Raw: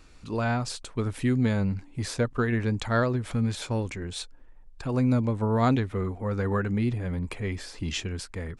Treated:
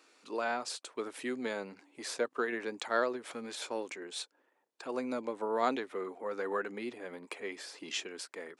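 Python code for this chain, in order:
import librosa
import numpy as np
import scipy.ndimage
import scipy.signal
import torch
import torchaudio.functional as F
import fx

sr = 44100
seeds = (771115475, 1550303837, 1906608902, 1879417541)

y = scipy.signal.sosfilt(scipy.signal.butter(4, 330.0, 'highpass', fs=sr, output='sos'), x)
y = y * librosa.db_to_amplitude(-4.0)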